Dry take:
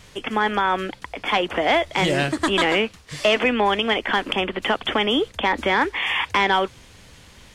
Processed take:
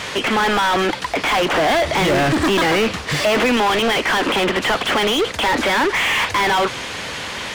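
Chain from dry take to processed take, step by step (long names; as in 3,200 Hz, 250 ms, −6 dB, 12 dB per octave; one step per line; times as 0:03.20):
0:01.55–0:03.57: low-shelf EQ 400 Hz +10 dB
mid-hump overdrive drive 39 dB, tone 2,500 Hz, clips at −4 dBFS
level −5.5 dB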